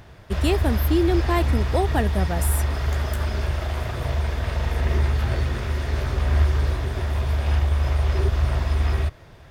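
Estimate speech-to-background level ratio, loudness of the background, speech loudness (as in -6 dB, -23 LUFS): -1.5 dB, -24.0 LUFS, -25.5 LUFS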